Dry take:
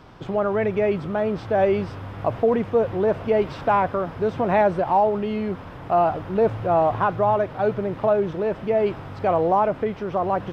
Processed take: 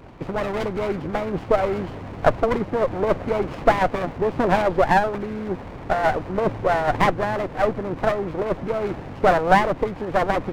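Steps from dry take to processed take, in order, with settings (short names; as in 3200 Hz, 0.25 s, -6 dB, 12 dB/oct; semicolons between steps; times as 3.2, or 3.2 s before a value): nonlinear frequency compression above 1100 Hz 1.5:1; harmonic-percussive split harmonic -13 dB; running maximum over 17 samples; gain +8.5 dB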